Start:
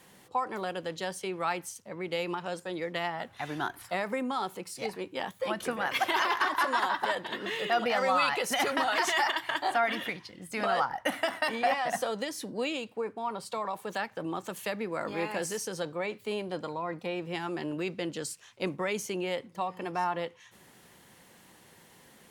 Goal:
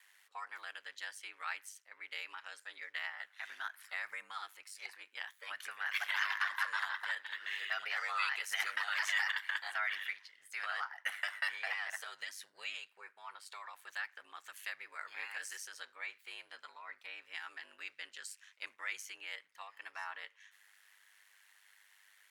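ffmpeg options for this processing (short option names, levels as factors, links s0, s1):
-af "highpass=f=1700:t=q:w=2.2,aeval=exprs='val(0)*sin(2*PI*50*n/s)':c=same,volume=0.473"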